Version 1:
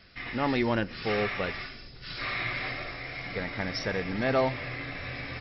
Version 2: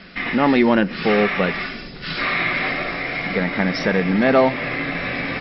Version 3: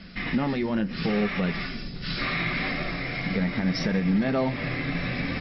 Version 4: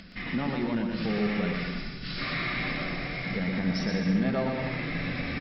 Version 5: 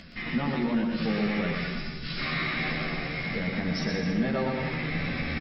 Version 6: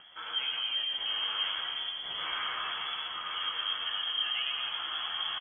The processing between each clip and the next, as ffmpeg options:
ffmpeg -i in.wav -filter_complex "[0:a]lowpass=3700,lowshelf=frequency=140:width_type=q:width=3:gain=-7,asplit=2[link_01][link_02];[link_02]acompressor=threshold=-38dB:ratio=6,volume=1dB[link_03];[link_01][link_03]amix=inputs=2:normalize=0,volume=8.5dB" out.wav
ffmpeg -i in.wav -af "bass=frequency=250:gain=12,treble=frequency=4000:gain=9,alimiter=limit=-8dB:level=0:latency=1:release=156,flanger=delay=3.3:depth=7.5:regen=-61:speed=0.75:shape=triangular,volume=-4dB" out.wav
ffmpeg -i in.wav -af "acompressor=mode=upward:threshold=-41dB:ratio=2.5,aecho=1:1:120|210|277.5|328.1|366.1:0.631|0.398|0.251|0.158|0.1,volume=-5dB" out.wav
ffmpeg -i in.wav -filter_complex "[0:a]asplit=2[link_01][link_02];[link_02]adelay=13,volume=-4dB[link_03];[link_01][link_03]amix=inputs=2:normalize=0" out.wav
ffmpeg -i in.wav -af "flanger=delay=8.8:depth=7.7:regen=76:speed=1.4:shape=triangular,lowpass=frequency=2900:width_type=q:width=0.5098,lowpass=frequency=2900:width_type=q:width=0.6013,lowpass=frequency=2900:width_type=q:width=0.9,lowpass=frequency=2900:width_type=q:width=2.563,afreqshift=-3400,aecho=1:1:1046:0.447,volume=-1.5dB" out.wav

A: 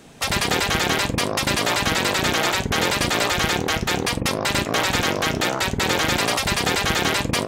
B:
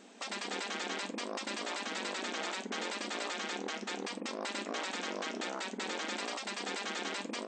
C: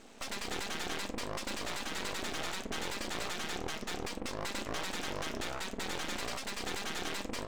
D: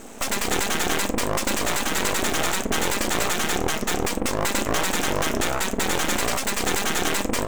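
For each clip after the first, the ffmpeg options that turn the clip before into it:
ffmpeg -i in.wav -af "afftfilt=real='re*between(b*sr/4096,190,8600)':imag='im*between(b*sr/4096,190,8600)':win_size=4096:overlap=0.75,alimiter=limit=-19.5dB:level=0:latency=1:release=328,volume=-8.5dB" out.wav
ffmpeg -i in.wav -af "aeval=exprs='max(val(0),0)':channel_layout=same,volume=4.5dB" out.wav
ffmpeg -i in.wav -filter_complex "[0:a]aexciter=amount=4.8:drive=1.4:freq=6300,asplit=2[link_01][link_02];[link_02]adynamicsmooth=sensitivity=7:basefreq=2400,volume=-0.5dB[link_03];[link_01][link_03]amix=inputs=2:normalize=0,volume=9dB" out.wav

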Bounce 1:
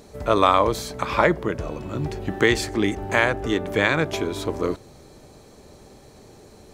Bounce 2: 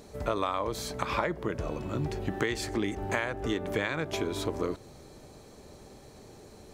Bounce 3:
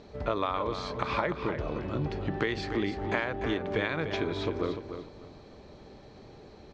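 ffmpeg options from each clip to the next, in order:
ffmpeg -i in.wav -af "acompressor=threshold=-23dB:ratio=6,volume=-3dB" out.wav
ffmpeg -i in.wav -af "lowpass=frequency=4600:width=0.5412,lowpass=frequency=4600:width=1.3066,aecho=1:1:296|592|888:0.355|0.0923|0.024" out.wav

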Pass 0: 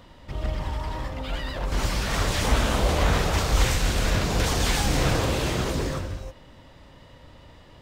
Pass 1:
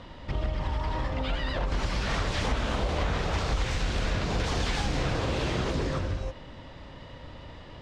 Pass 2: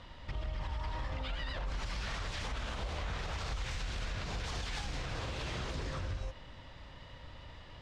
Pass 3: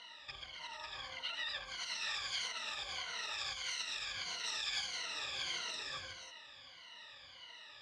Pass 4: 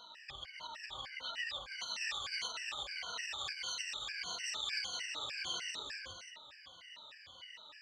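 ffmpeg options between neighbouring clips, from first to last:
ffmpeg -i in.wav -af "lowpass=5100,acompressor=threshold=-30dB:ratio=5,volume=4.5dB" out.wav
ffmpeg -i in.wav -af "equalizer=frequency=310:width_type=o:width=2.6:gain=-8,alimiter=level_in=2dB:limit=-24dB:level=0:latency=1:release=77,volume=-2dB,volume=-3.5dB" out.wav
ffmpeg -i in.wav -af "afftfilt=real='re*pow(10,19/40*sin(2*PI*(1.9*log(max(b,1)*sr/1024/100)/log(2)-(-1.6)*(pts-256)/sr)))':imag='im*pow(10,19/40*sin(2*PI*(1.9*log(max(b,1)*sr/1024/100)/log(2)-(-1.6)*(pts-256)/sr)))':win_size=1024:overlap=0.75,bandpass=frequency=4500:width_type=q:width=0.79:csg=0,volume=2.5dB" out.wav
ffmpeg -i in.wav -af "afftfilt=real='re*gt(sin(2*PI*3.3*pts/sr)*(1-2*mod(floor(b*sr/1024/1500),2)),0)':imag='im*gt(sin(2*PI*3.3*pts/sr)*(1-2*mod(floor(b*sr/1024/1500),2)),0)':win_size=1024:overlap=0.75,volume=3dB" out.wav

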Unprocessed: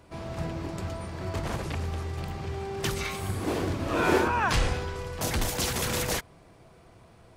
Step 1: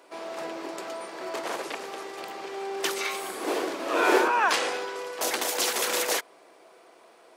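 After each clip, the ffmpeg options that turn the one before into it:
ffmpeg -i in.wav -af "highpass=frequency=350:width=0.5412,highpass=frequency=350:width=1.3066,volume=3.5dB" out.wav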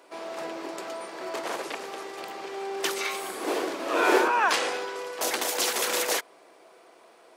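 ffmpeg -i in.wav -af anull out.wav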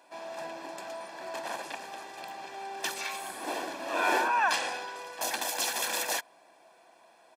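ffmpeg -i in.wav -af "aecho=1:1:1.2:0.66,volume=-5.5dB" out.wav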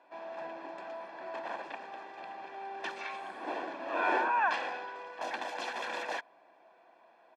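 ffmpeg -i in.wav -af "highpass=180,lowpass=2400,volume=-2dB" out.wav

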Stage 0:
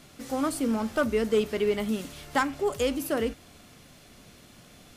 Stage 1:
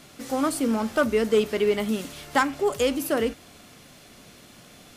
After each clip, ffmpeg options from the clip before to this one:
ffmpeg -i in.wav -af "lowshelf=frequency=110:gain=-8,volume=4dB" out.wav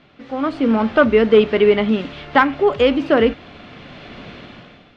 ffmpeg -i in.wav -af "lowpass=frequency=3400:width=0.5412,lowpass=frequency=3400:width=1.3066,dynaudnorm=framelen=120:gausssize=9:maxgain=15.5dB,volume=-1dB" out.wav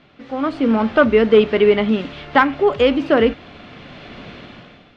ffmpeg -i in.wav -af anull out.wav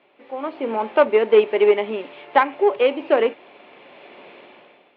ffmpeg -i in.wav -af "aeval=exprs='0.794*(cos(1*acos(clip(val(0)/0.794,-1,1)))-cos(1*PI/2))+0.1*(cos(3*acos(clip(val(0)/0.794,-1,1)))-cos(3*PI/2))+0.02*(cos(6*acos(clip(val(0)/0.794,-1,1)))-cos(6*PI/2))':channel_layout=same,highpass=370,equalizer=frequency=380:width_type=q:width=4:gain=9,equalizer=frequency=560:width_type=q:width=4:gain=6,equalizer=frequency=900:width_type=q:width=4:gain=9,equalizer=frequency=1400:width_type=q:width=4:gain=-4,equalizer=frequency=2400:width_type=q:width=4:gain=5,lowpass=frequency=3500:width=0.5412,lowpass=frequency=3500:width=1.3066,volume=-4dB" out.wav

